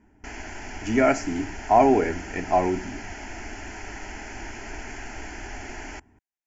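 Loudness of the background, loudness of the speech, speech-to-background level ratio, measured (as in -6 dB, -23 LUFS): -38.0 LUFS, -23.0 LUFS, 15.0 dB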